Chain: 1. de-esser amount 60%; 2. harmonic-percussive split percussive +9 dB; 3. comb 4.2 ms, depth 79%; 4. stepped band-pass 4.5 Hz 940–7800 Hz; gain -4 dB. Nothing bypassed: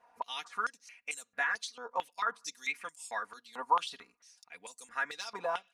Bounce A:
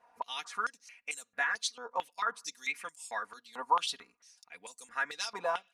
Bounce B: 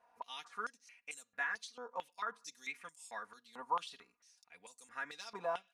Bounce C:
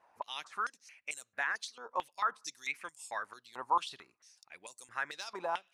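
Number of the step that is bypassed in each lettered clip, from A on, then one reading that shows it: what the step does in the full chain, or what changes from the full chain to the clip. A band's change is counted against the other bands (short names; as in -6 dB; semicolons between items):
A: 1, 4 kHz band +3.5 dB; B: 2, 250 Hz band +4.5 dB; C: 3, 250 Hz band +2.5 dB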